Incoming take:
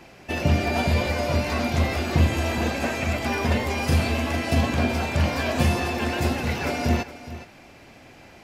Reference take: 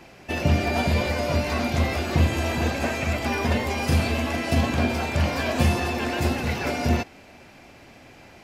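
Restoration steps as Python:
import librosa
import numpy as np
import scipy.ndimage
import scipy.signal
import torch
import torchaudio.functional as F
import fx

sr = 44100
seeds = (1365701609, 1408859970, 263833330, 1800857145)

y = fx.fix_echo_inverse(x, sr, delay_ms=417, level_db=-15.0)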